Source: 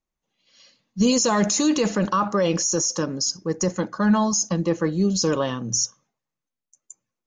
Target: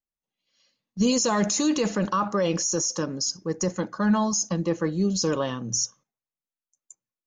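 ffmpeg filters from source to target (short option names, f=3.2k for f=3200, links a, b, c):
-af "agate=range=-10dB:threshold=-45dB:ratio=16:detection=peak,volume=-3dB"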